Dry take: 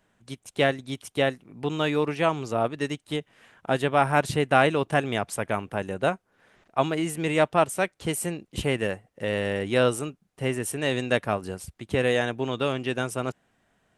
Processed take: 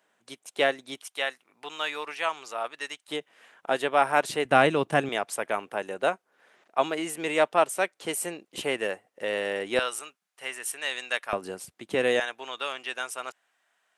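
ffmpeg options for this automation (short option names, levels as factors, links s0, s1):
-af "asetnsamples=n=441:p=0,asendcmd='1.03 highpass f 980;3.08 highpass f 400;4.45 highpass f 160;5.09 highpass f 390;9.79 highpass f 1100;11.33 highpass f 280;12.2 highpass f 950',highpass=420"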